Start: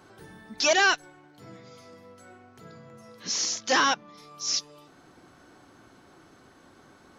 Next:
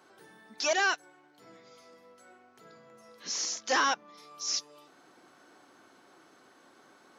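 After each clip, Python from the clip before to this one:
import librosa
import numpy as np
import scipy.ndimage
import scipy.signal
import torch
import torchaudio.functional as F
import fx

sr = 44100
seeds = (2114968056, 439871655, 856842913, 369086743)

y = scipy.signal.sosfilt(scipy.signal.bessel(2, 340.0, 'highpass', norm='mag', fs=sr, output='sos'), x)
y = fx.dynamic_eq(y, sr, hz=3500.0, q=1.0, threshold_db=-39.0, ratio=4.0, max_db=-4)
y = fx.rider(y, sr, range_db=10, speed_s=2.0)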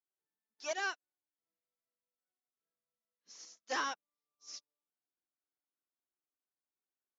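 y = fx.upward_expand(x, sr, threshold_db=-50.0, expansion=2.5)
y = y * 10.0 ** (-8.0 / 20.0)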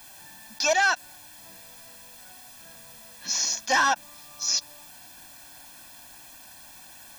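y = fx.leveller(x, sr, passes=1)
y = y + 0.92 * np.pad(y, (int(1.2 * sr / 1000.0), 0))[:len(y)]
y = fx.env_flatten(y, sr, amount_pct=70)
y = y * 10.0 ** (7.5 / 20.0)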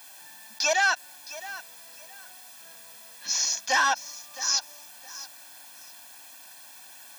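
y = fx.highpass(x, sr, hz=600.0, slope=6)
y = fx.echo_feedback(y, sr, ms=665, feedback_pct=24, wet_db=-16.0)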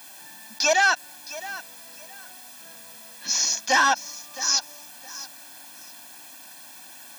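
y = fx.peak_eq(x, sr, hz=240.0, db=8.0, octaves=1.5)
y = y * 10.0 ** (3.0 / 20.0)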